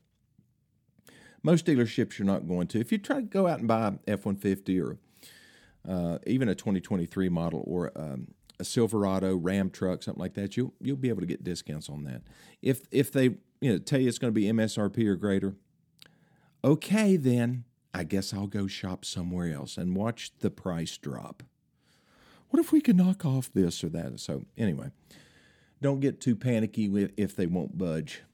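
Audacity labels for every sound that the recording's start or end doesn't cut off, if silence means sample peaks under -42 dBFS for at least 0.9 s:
1.070000	21.430000	sound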